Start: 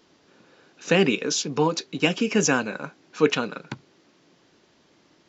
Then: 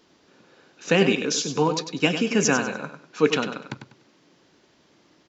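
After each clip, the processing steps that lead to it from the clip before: feedback delay 98 ms, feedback 28%, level -9 dB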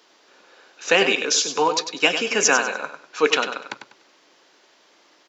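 high-pass 550 Hz 12 dB/octave; trim +6 dB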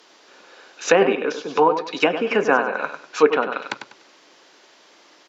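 low-pass that closes with the level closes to 1.2 kHz, closed at -18 dBFS; trim +4.5 dB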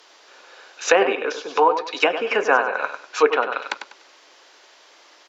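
high-pass 460 Hz 12 dB/octave; trim +1.5 dB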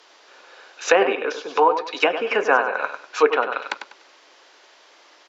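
treble shelf 6.7 kHz -6.5 dB

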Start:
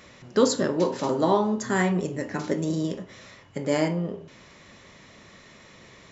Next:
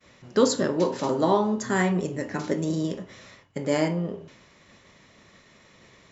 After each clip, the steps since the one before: expander -45 dBFS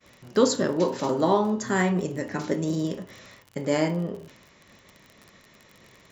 crackle 43 per s -36 dBFS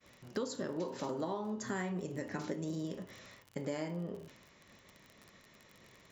compression 6:1, threshold -28 dBFS, peak gain reduction 14 dB; trim -6.5 dB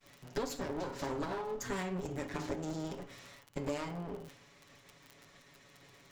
comb filter that takes the minimum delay 7.1 ms; trim +2.5 dB

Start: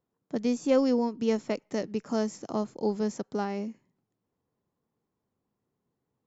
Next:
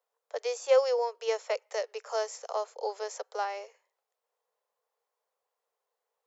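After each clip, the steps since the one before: steep high-pass 460 Hz 72 dB/octave; trim +2.5 dB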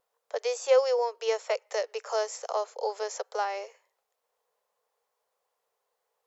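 in parallel at -2 dB: compression, threshold -36 dBFS, peak gain reduction 16.5 dB; on the sum: wow and flutter 20 cents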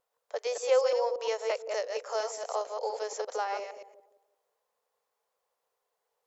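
chunks repeated in reverse 116 ms, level -5 dB; feedback echo behind a low-pass 173 ms, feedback 32%, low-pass 470 Hz, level -7.5 dB; trim -3 dB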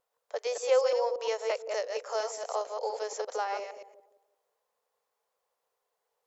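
no audible change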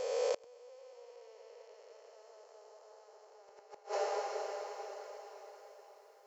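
spectral blur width 985 ms; echo that smears into a reverb 473 ms, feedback 49%, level -6 dB; inverted gate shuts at -30 dBFS, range -30 dB; trim +8 dB

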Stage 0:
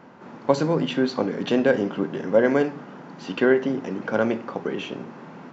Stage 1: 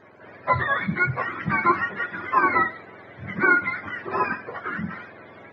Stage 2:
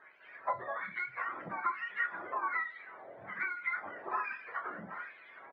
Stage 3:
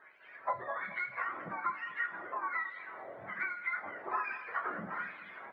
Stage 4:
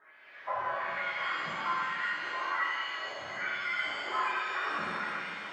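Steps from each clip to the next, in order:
spectrum inverted on a logarithmic axis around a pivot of 750 Hz; resonant high shelf 2.3 kHz -7 dB, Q 3
compression 10:1, threshold -26 dBFS, peak gain reduction 13 dB; LFO band-pass sine 1.2 Hz 590–2800 Hz; doubling 30 ms -10 dB
gain riding within 4 dB 0.5 s; two-band feedback delay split 1.8 kHz, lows 215 ms, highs 83 ms, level -15 dB
pitch-shifted reverb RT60 2.1 s, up +7 st, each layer -8 dB, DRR -7 dB; trim -4 dB

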